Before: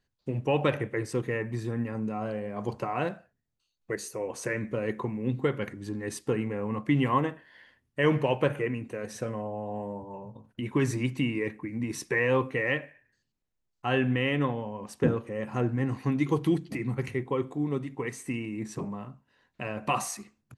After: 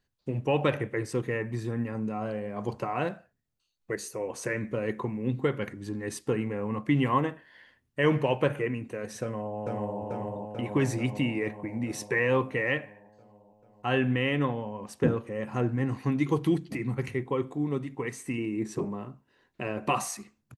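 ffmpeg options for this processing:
-filter_complex "[0:a]asplit=2[a][b];[b]afade=t=in:st=9.22:d=0.01,afade=t=out:st=10.01:d=0.01,aecho=0:1:440|880|1320|1760|2200|2640|3080|3520|3960|4400|4840|5280:0.794328|0.55603|0.389221|0.272455|0.190718|0.133503|0.0934519|0.0654163|0.0457914|0.032054|0.0224378|0.0157065[c];[a][c]amix=inputs=2:normalize=0,asettb=1/sr,asplit=3[d][e][f];[d]atrim=end=18.384[g];[e]atrim=start=18.38:end=19.94,asetpts=PTS-STARTPTS,afade=t=in:d=0.004:c=qsin,afade=t=out:st=1.556:d=0.004:c=qsin,equalizer=f=370:w=2.4:g=8.5[h];[f]atrim=start=19.936[i];[g][h]acrossfade=d=0.004:c1=hsin:c2=qsin[j];[j][i]acrossfade=d=0.004:c1=qsin:c2=hsin"

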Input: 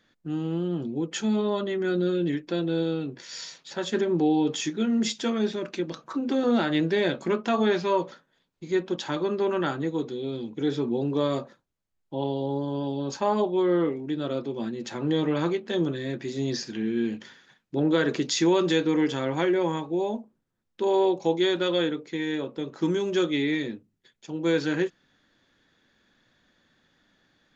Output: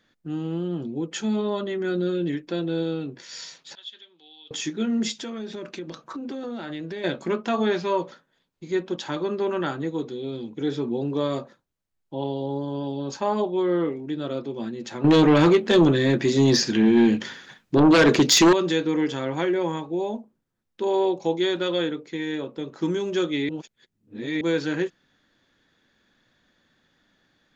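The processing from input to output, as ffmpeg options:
-filter_complex "[0:a]asettb=1/sr,asplit=3[a][b][c];[a]atrim=end=3.754[d];[b]atrim=start=3.75:end=4.51,asetpts=PTS-STARTPTS,afade=t=in:d=0.004:c=qsin,afade=t=out:st=0.756:d=0.004:c=qsin,bandpass=f=3.4k:t=q:w=7.2[e];[c]atrim=start=4.506[f];[d][e]acrossfade=d=0.004:c1=hsin:c2=qsin[g];[g][f]acrossfade=d=0.004:c1=qsin:c2=hsin,asettb=1/sr,asplit=3[h][i][j];[h]atrim=end=5.114[k];[i]atrim=start=5.11:end=7.04,asetpts=PTS-STARTPTS,afade=t=in:d=0.004:c=qsin,afade=t=out:st=1.926:d=0.004:c=qsin,acompressor=threshold=-30dB:ratio=6:attack=3.2:release=140:knee=1:detection=peak[l];[j]atrim=start=7.036[m];[k][l]acrossfade=d=0.004:c1=hsin:c2=qsin[n];[n][m]acrossfade=d=0.004:c1=qsin:c2=hsin,asettb=1/sr,asplit=3[o][p][q];[o]atrim=end=15.044[r];[p]atrim=start=15.04:end=18.53,asetpts=PTS-STARTPTS,afade=t=in:d=0.004:c=qsin,afade=t=out:st=3.486:d=0.004:c=qsin,aeval=exprs='0.282*sin(PI/2*2.51*val(0)/0.282)':c=same[s];[q]atrim=start=18.526[t];[r][s]acrossfade=d=0.004:c1=hsin:c2=qsin[u];[u][t]acrossfade=d=0.004:c1=qsin:c2=hsin,asplit=3[v][w][x];[v]atrim=end=23.492[y];[w]atrim=start=23.488:end=24.412,asetpts=PTS-STARTPTS,areverse[z];[x]atrim=start=24.408[aa];[y][z]acrossfade=d=0.004:c1=hsin:c2=hsin[ab];[ab][aa]acrossfade=d=0.004:c1=hsin:c2=hsin"

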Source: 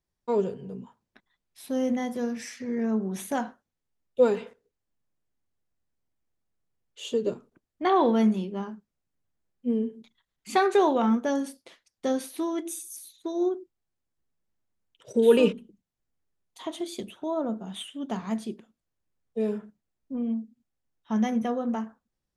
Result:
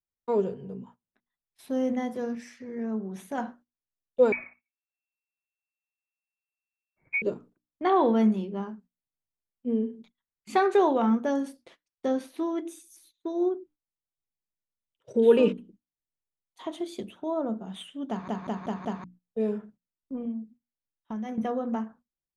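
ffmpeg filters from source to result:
-filter_complex "[0:a]asettb=1/sr,asplit=3[a][b][c];[a]atrim=end=4.324[d];[b]atrim=start=4.32:end=7.22,asetpts=PTS-STARTPTS,afade=t=in:d=0.004:c=qsin,afade=t=out:st=2.896:d=0.004:c=qsin,lowpass=f=2.3k:t=q:w=0.5098,lowpass=f=2.3k:t=q:w=0.6013,lowpass=f=2.3k:t=q:w=0.9,lowpass=f=2.3k:t=q:w=2.563,afreqshift=-2700[e];[c]atrim=start=7.216[f];[d][e]acrossfade=d=0.004:c1=hsin:c2=qsin[g];[g][f]acrossfade=d=0.004:c1=qsin:c2=hsin,asettb=1/sr,asplit=3[h][i][j];[h]atrim=end=12.064[k];[i]atrim=start=12.06:end=15.48,asetpts=PTS-STARTPTS,afade=t=in:d=0.004:c=qsin,afade=t=out:st=3.416:d=0.004:c=qsin,highshelf=f=7.1k:g=-8.5[l];[j]atrim=start=15.476[m];[k][l]acrossfade=d=0.004:c1=hsin:c2=qsin[n];[n][m]acrossfade=d=0.004:c1=qsin:c2=hsin,asettb=1/sr,asplit=3[o][p][q];[o]atrim=end=20.254[r];[p]atrim=start=20.25:end=21.38,asetpts=PTS-STARTPTS,afade=t=in:d=0.004:c=qsin,afade=t=out:st=1.126:d=0.004:c=qsin,acompressor=threshold=-31dB:ratio=6:attack=3.2:release=140:knee=1:detection=peak[s];[q]atrim=start=21.376[t];[r][s]acrossfade=d=0.004:c1=hsin:c2=qsin[u];[u][t]acrossfade=d=0.004:c1=qsin:c2=hsin,asplit=8[v][w][x][y][z][aa][ab][ac];[v]atrim=end=2.352[ad];[w]atrim=start=2.348:end=3.382,asetpts=PTS-STARTPTS,volume=-4.5dB[ae];[x]atrim=start=3.378:end=18.282[af];[y]atrim=start=18.088:end=18.282[ag];[z]atrim=start=18.088:end=18.282[ah];[aa]atrim=start=18.088:end=18.282[ai];[ab]atrim=start=18.088:end=18.282[aj];[ac]atrim=start=19.038[ak];[ad][ae]acrossfade=d=0.004:c1=hsin:c2=hsin[al];[al][af]acrossfade=d=0.004:c1=hsin:c2=hsin[am];[am][ag]acrossfade=d=0.004:c1=hsin:c2=hsin[an];[an][ah]acrossfade=d=0.004:c1=hsin:c2=hsin[ao];[ao][ai]acrossfade=d=0.004:c1=hsin:c2=hsin[ap];[ap][aj]acrossfade=d=0.004:c1=hsin:c2=hsin[aq];[aq][ak]acrossfade=d=0.004:c1=hsin:c2=hsin,bandreject=f=60:t=h:w=6,bandreject=f=120:t=h:w=6,bandreject=f=180:t=h:w=6,bandreject=f=240:t=h:w=6,bandreject=f=300:t=h:w=6,agate=range=-15dB:threshold=-52dB:ratio=16:detection=peak,highshelf=f=3.1k:g=-8.5"

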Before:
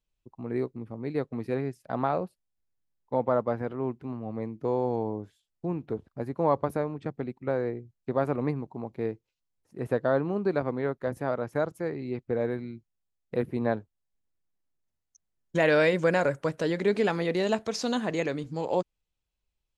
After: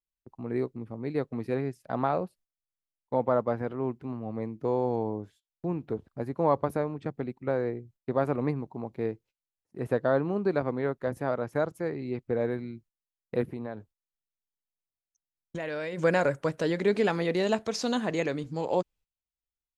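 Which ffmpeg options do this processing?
-filter_complex "[0:a]asplit=3[a][b][c];[a]afade=t=out:st=13.46:d=0.02[d];[b]acompressor=threshold=-33dB:ratio=4:attack=3.2:release=140:knee=1:detection=peak,afade=t=in:st=13.46:d=0.02,afade=t=out:st=15.97:d=0.02[e];[c]afade=t=in:st=15.97:d=0.02[f];[d][e][f]amix=inputs=3:normalize=0,agate=range=-16dB:threshold=-55dB:ratio=16:detection=peak"

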